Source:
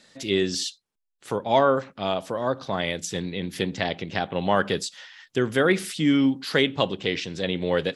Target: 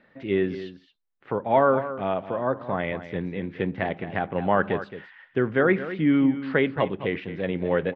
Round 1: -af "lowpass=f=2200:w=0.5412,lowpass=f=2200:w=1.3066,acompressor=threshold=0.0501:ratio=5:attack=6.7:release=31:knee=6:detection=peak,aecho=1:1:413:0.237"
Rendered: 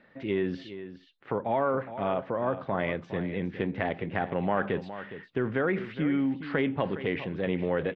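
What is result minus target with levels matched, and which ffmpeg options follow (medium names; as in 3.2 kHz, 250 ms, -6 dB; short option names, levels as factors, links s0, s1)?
echo 193 ms late; compression: peak gain reduction +9.5 dB
-af "lowpass=f=2200:w=0.5412,lowpass=f=2200:w=1.3066,aecho=1:1:220:0.237"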